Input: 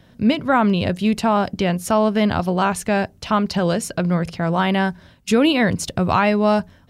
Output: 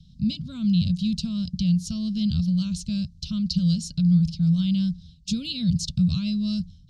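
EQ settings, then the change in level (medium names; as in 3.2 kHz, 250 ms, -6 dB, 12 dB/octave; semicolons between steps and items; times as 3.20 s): elliptic band-stop 160–4200 Hz, stop band 40 dB; distance through air 140 m; peaking EQ 110 Hz -13 dB 0.4 oct; +7.0 dB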